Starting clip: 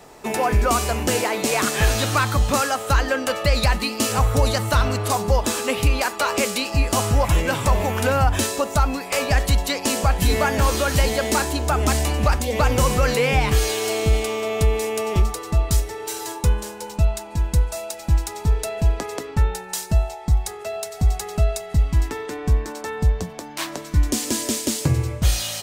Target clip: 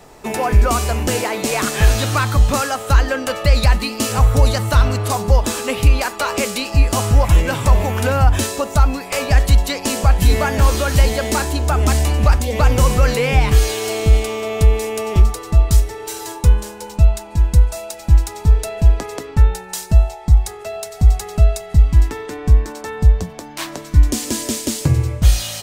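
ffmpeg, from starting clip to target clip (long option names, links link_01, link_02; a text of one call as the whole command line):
ffmpeg -i in.wav -af "lowshelf=frequency=100:gain=8.5,volume=1dB" out.wav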